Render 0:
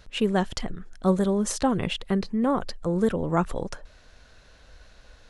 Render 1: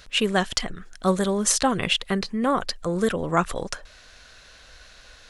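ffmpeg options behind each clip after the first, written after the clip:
-af "tiltshelf=f=830:g=-6,bandreject=f=890:w=12,volume=4dB"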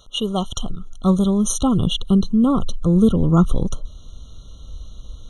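-af "asubboost=boost=10.5:cutoff=240,afftfilt=real='re*eq(mod(floor(b*sr/1024/1400),2),0)':imag='im*eq(mod(floor(b*sr/1024/1400),2),0)':win_size=1024:overlap=0.75"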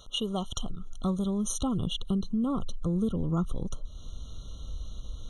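-af "acompressor=threshold=-30dB:ratio=2.5,volume=-1.5dB"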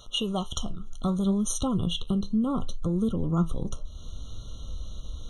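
-af "flanger=delay=8:depth=7.2:regen=65:speed=0.66:shape=triangular,volume=7dB"

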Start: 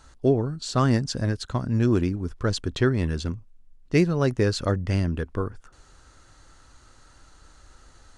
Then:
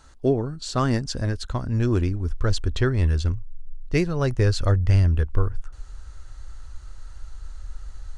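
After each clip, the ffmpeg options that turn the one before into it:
-af "asubboost=boost=11.5:cutoff=62"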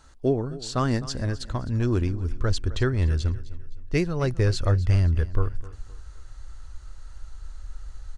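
-af "aecho=1:1:258|516|774:0.141|0.0494|0.0173,volume=-2dB"

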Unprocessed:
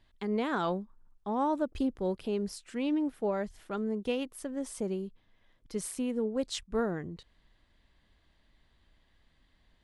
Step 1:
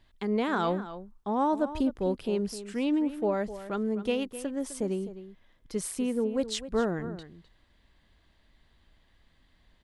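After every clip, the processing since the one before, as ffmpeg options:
-filter_complex "[0:a]asplit=2[a][b];[b]adelay=256.6,volume=-13dB,highshelf=f=4k:g=-5.77[c];[a][c]amix=inputs=2:normalize=0,volume=3dB"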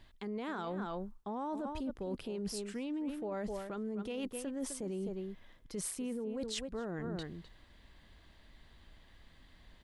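-af "alimiter=level_in=2dB:limit=-24dB:level=0:latency=1:release=14,volume=-2dB,areverse,acompressor=threshold=-41dB:ratio=6,areverse,volume=4.5dB"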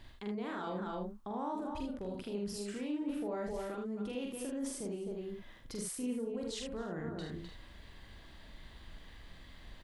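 -filter_complex "[0:a]alimiter=level_in=14dB:limit=-24dB:level=0:latency=1:release=261,volume=-14dB,asplit=2[a][b];[b]aecho=0:1:44|77:0.708|0.562[c];[a][c]amix=inputs=2:normalize=0,volume=4dB"

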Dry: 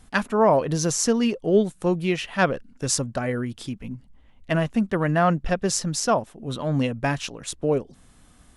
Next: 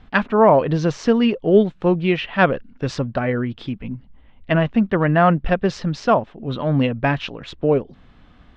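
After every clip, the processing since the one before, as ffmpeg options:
-af "lowpass=f=3.6k:w=0.5412,lowpass=f=3.6k:w=1.3066,volume=5dB"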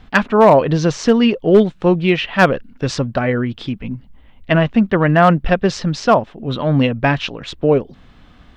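-af "highshelf=f=5.5k:g=10,volume=6dB,asoftclip=hard,volume=-6dB,volume=3.5dB"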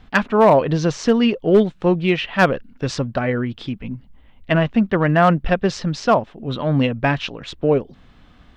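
-af "aeval=exprs='0.794*(cos(1*acos(clip(val(0)/0.794,-1,1)))-cos(1*PI/2))+0.00501*(cos(7*acos(clip(val(0)/0.794,-1,1)))-cos(7*PI/2))':c=same,volume=-3dB"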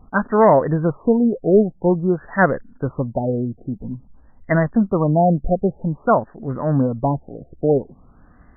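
-af "afftfilt=real='re*lt(b*sr/1024,740*pow(2100/740,0.5+0.5*sin(2*PI*0.5*pts/sr)))':imag='im*lt(b*sr/1024,740*pow(2100/740,0.5+0.5*sin(2*PI*0.5*pts/sr)))':win_size=1024:overlap=0.75"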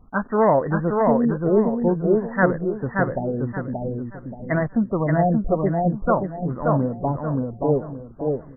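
-filter_complex "[0:a]asplit=2[a][b];[b]aecho=0:1:578|1156|1734|2312:0.708|0.212|0.0637|0.0191[c];[a][c]amix=inputs=2:normalize=0,flanger=delay=0.6:depth=5.5:regen=-78:speed=0.82:shape=sinusoidal"

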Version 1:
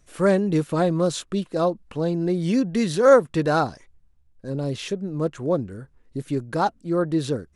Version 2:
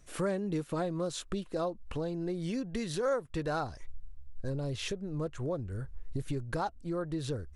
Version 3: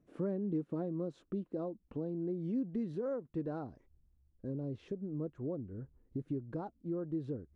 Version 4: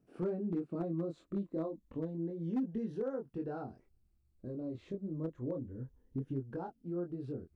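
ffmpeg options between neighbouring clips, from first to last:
-af "acompressor=threshold=-33dB:ratio=3,asubboost=boost=8.5:cutoff=71"
-af "bandpass=f=260:t=q:w=1.5:csg=0,volume=1dB"
-filter_complex "[0:a]afftfilt=real='re*pow(10,6/40*sin(2*PI*(1.1*log(max(b,1)*sr/1024/100)/log(2)-(-0.29)*(pts-256)/sr)))':imag='im*pow(10,6/40*sin(2*PI*(1.1*log(max(b,1)*sr/1024/100)/log(2)-(-0.29)*(pts-256)/sr)))':win_size=1024:overlap=0.75,flanger=delay=22.5:depth=2.5:speed=0.3,acrossover=split=970[a][b];[a]volume=31dB,asoftclip=hard,volume=-31dB[c];[c][b]amix=inputs=2:normalize=0,volume=2.5dB"

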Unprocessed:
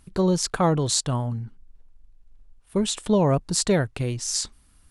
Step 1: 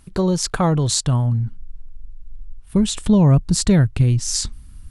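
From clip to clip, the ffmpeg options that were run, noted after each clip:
-filter_complex "[0:a]asubboost=boost=6:cutoff=210,asplit=2[a][b];[b]acompressor=threshold=-23dB:ratio=6,volume=1.5dB[c];[a][c]amix=inputs=2:normalize=0,volume=-2dB"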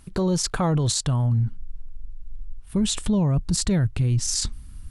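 -af "alimiter=limit=-15dB:level=0:latency=1:release=17"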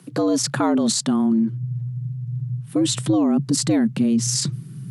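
-af "afreqshift=110,volume=2.5dB"

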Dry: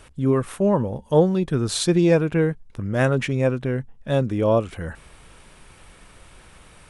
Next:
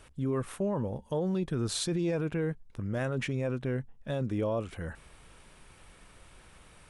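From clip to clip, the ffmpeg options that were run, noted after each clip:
-af "alimiter=limit=-16dB:level=0:latency=1:release=22,volume=-7dB"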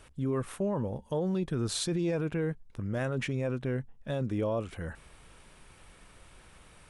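-af anull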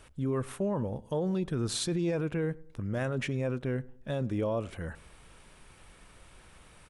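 -filter_complex "[0:a]asplit=2[a][b];[b]adelay=99,lowpass=f=1.4k:p=1,volume=-21dB,asplit=2[c][d];[d]adelay=99,lowpass=f=1.4k:p=1,volume=0.41,asplit=2[e][f];[f]adelay=99,lowpass=f=1.4k:p=1,volume=0.41[g];[a][c][e][g]amix=inputs=4:normalize=0"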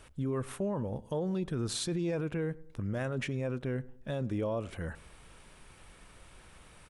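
-af "alimiter=level_in=1.5dB:limit=-24dB:level=0:latency=1:release=142,volume=-1.5dB"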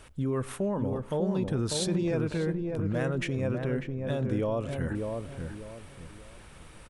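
-filter_complex "[0:a]asplit=2[a][b];[b]adelay=595,lowpass=f=1k:p=1,volume=-3.5dB,asplit=2[c][d];[d]adelay=595,lowpass=f=1k:p=1,volume=0.33,asplit=2[e][f];[f]adelay=595,lowpass=f=1k:p=1,volume=0.33,asplit=2[g][h];[h]adelay=595,lowpass=f=1k:p=1,volume=0.33[i];[a][c][e][g][i]amix=inputs=5:normalize=0,volume=3.5dB"

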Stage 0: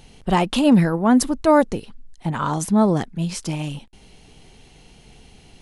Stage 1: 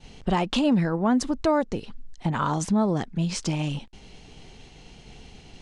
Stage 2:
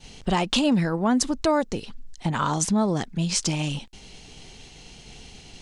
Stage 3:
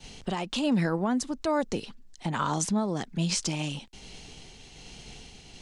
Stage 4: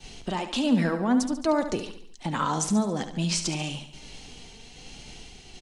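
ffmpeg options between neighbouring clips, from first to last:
-af "agate=range=-33dB:threshold=-46dB:ratio=3:detection=peak,lowpass=f=7.6k:w=0.5412,lowpass=f=7.6k:w=1.3066,acompressor=threshold=-25dB:ratio=2.5,volume=2dB"
-af "highshelf=f=3.4k:g=10.5"
-filter_complex "[0:a]acrossover=split=140[a][b];[a]acompressor=threshold=-43dB:ratio=6[c];[b]alimiter=limit=-16dB:level=0:latency=1:release=186[d];[c][d]amix=inputs=2:normalize=0,tremolo=f=1.2:d=0.37"
-af "flanger=delay=2.5:depth=2:regen=65:speed=0.55:shape=triangular,aecho=1:1:71|142|213|284|355:0.316|0.158|0.0791|0.0395|0.0198,volume=5.5dB"

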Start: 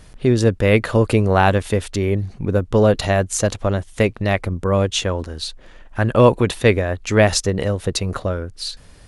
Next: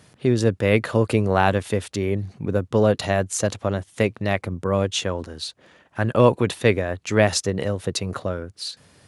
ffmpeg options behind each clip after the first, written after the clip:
-af "highpass=f=93:w=0.5412,highpass=f=93:w=1.3066,volume=-3.5dB"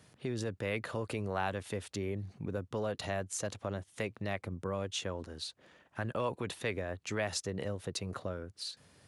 -filter_complex "[0:a]acrossover=split=630|1100[a][b][c];[a]alimiter=limit=-15.5dB:level=0:latency=1[d];[d][b][c]amix=inputs=3:normalize=0,acompressor=threshold=-31dB:ratio=1.5,volume=-8.5dB"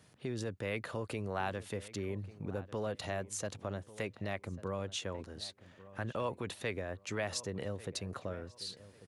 -filter_complex "[0:a]asplit=2[a][b];[b]adelay=1144,lowpass=f=2.2k:p=1,volume=-17dB,asplit=2[c][d];[d]adelay=1144,lowpass=f=2.2k:p=1,volume=0.29,asplit=2[e][f];[f]adelay=1144,lowpass=f=2.2k:p=1,volume=0.29[g];[a][c][e][g]amix=inputs=4:normalize=0,volume=-2dB"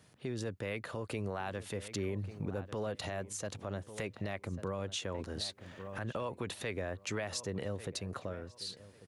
-af "dynaudnorm=f=270:g=11:m=10dB,alimiter=level_in=3dB:limit=-24dB:level=0:latency=1:release=466,volume=-3dB"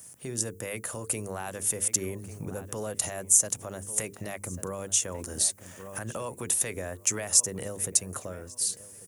-af "bandreject=f=50:t=h:w=6,bandreject=f=100:t=h:w=6,bandreject=f=150:t=h:w=6,bandreject=f=200:t=h:w=6,bandreject=f=250:t=h:w=6,bandreject=f=300:t=h:w=6,bandreject=f=350:t=h:w=6,bandreject=f=400:t=h:w=6,bandreject=f=450:t=h:w=6,aexciter=amount=11.7:drive=6.3:freq=6.1k,volume=2.5dB"

